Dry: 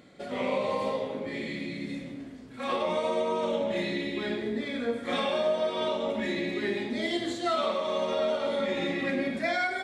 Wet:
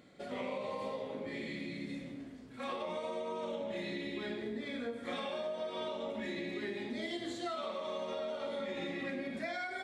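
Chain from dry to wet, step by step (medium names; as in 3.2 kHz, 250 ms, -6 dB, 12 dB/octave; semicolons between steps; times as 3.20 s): compression, threshold -30 dBFS, peak gain reduction 7.5 dB; trim -5.5 dB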